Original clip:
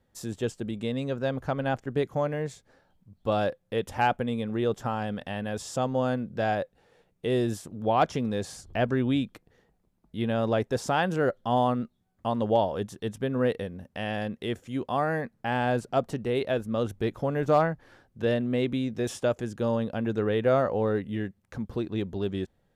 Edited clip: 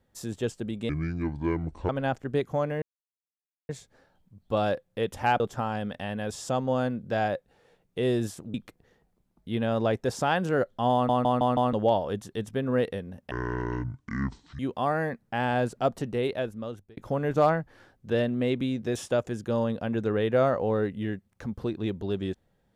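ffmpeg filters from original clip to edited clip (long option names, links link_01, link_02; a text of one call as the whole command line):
ffmpeg -i in.wav -filter_complex "[0:a]asplit=14[link_01][link_02][link_03][link_04][link_05][link_06][link_07][link_08][link_09][link_10][link_11][link_12][link_13][link_14];[link_01]atrim=end=0.894[link_15];[link_02]atrim=start=0.89:end=1.51,asetpts=PTS-STARTPTS,asetrate=27342,aresample=44100[link_16];[link_03]atrim=start=1.506:end=2.44,asetpts=PTS-STARTPTS,afade=type=out:start_time=0.93:duration=0.004:curve=hsin,apad=pad_dur=0.87[link_17];[link_04]atrim=start=2.44:end=4.152,asetpts=PTS-STARTPTS,afade=type=in:duration=0.004:curve=hsin[link_18];[link_05]atrim=start=4.668:end=7.812[link_19];[link_06]atrim=start=9.208:end=11.762[link_20];[link_07]atrim=start=11.598:end=11.762[link_21];[link_08]atrim=start=11.598:end=11.762[link_22];[link_09]atrim=start=11.598:end=11.762[link_23];[link_10]atrim=start=11.598:end=11.762[link_24];[link_11]atrim=start=12.398:end=13.984[link_25];[link_12]atrim=start=13.98:end=14.71,asetpts=PTS-STARTPTS,asetrate=25137,aresample=44100[link_26];[link_13]atrim=start=14.706:end=17.09,asetpts=PTS-STARTPTS,afade=type=out:start_time=1.604:duration=0.78[link_27];[link_14]atrim=start=17.09,asetpts=PTS-STARTPTS,afade=type=in:duration=0.004:curve=hsin[link_28];[link_15][link_16]acrossfade=duration=0.004:curve1=hsin:curve2=hsin[link_29];[link_17][link_18]concat=n=2:v=0:a=1[link_30];[link_29][link_30]acrossfade=duration=0.004:curve1=hsin:curve2=hsin[link_31];[link_31][link_19]acrossfade=duration=0.004:curve1=hsin:curve2=hsin[link_32];[link_32][link_20]acrossfade=duration=0.004:curve1=hsin:curve2=hsin[link_33];[link_33][link_21]acrossfade=duration=0.004:curve1=hsin:curve2=hsin[link_34];[link_34][link_22]acrossfade=duration=0.004:curve1=hsin:curve2=hsin[link_35];[link_35][link_23]acrossfade=duration=0.004:curve1=hsin:curve2=hsin[link_36];[link_36][link_24]acrossfade=duration=0.004:curve1=hsin:curve2=hsin[link_37];[link_37][link_25]acrossfade=duration=0.004:curve1=hsin:curve2=hsin[link_38];[link_38][link_26]acrossfade=duration=0.004:curve1=hsin:curve2=hsin[link_39];[link_27][link_28]concat=n=2:v=0:a=1[link_40];[link_39][link_40]acrossfade=duration=0.004:curve1=hsin:curve2=hsin" out.wav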